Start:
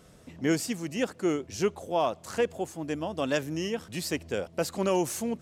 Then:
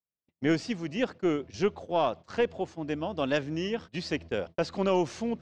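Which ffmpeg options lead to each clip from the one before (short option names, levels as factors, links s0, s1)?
-af "agate=range=0.00316:threshold=0.01:ratio=16:detection=peak,aeval=exprs='0.188*(cos(1*acos(clip(val(0)/0.188,-1,1)))-cos(1*PI/2))+0.0133*(cos(2*acos(clip(val(0)/0.188,-1,1)))-cos(2*PI/2))':c=same,lowpass=f=5000:w=0.5412,lowpass=f=5000:w=1.3066"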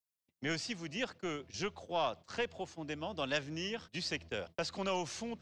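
-filter_complex "[0:a]highshelf=f=2900:g=10,acrossover=split=170|550|2000[s0][s1][s2][s3];[s1]acompressor=threshold=0.0141:ratio=6[s4];[s0][s4][s2][s3]amix=inputs=4:normalize=0,volume=0.473"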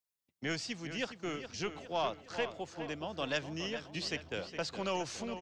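-filter_complex "[0:a]asplit=2[s0][s1];[s1]adelay=414,lowpass=f=4600:p=1,volume=0.316,asplit=2[s2][s3];[s3]adelay=414,lowpass=f=4600:p=1,volume=0.5,asplit=2[s4][s5];[s5]adelay=414,lowpass=f=4600:p=1,volume=0.5,asplit=2[s6][s7];[s7]adelay=414,lowpass=f=4600:p=1,volume=0.5,asplit=2[s8][s9];[s9]adelay=414,lowpass=f=4600:p=1,volume=0.5[s10];[s0][s2][s4][s6][s8][s10]amix=inputs=6:normalize=0"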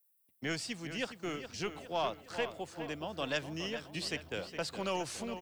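-af "aexciter=amount=9.6:drive=1.5:freq=8800"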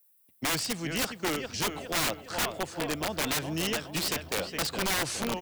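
-af "aeval=exprs='(mod(35.5*val(0)+1,2)-1)/35.5':c=same,volume=2.66"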